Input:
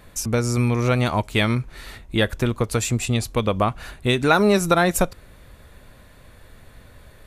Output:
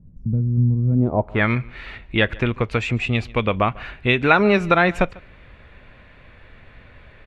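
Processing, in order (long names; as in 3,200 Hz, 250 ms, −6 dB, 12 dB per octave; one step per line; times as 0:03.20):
low-pass filter sweep 170 Hz → 2,500 Hz, 0:00.88–0:01.51
single-tap delay 146 ms −23.5 dB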